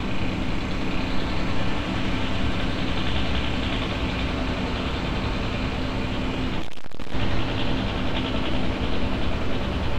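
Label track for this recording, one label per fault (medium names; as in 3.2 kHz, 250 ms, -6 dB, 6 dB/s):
6.590000	7.150000	clipped -21 dBFS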